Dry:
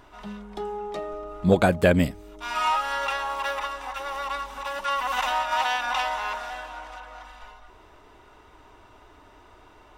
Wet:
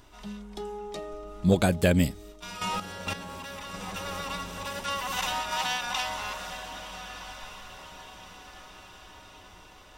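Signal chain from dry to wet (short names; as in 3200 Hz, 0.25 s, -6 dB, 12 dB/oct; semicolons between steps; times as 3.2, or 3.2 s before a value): EQ curve 140 Hz 0 dB, 780 Hz -7 dB, 1400 Hz -7 dB, 5900 Hz +5 dB; diffused feedback echo 1.317 s, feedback 52%, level -12 dB; 2.32–3.74 level quantiser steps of 10 dB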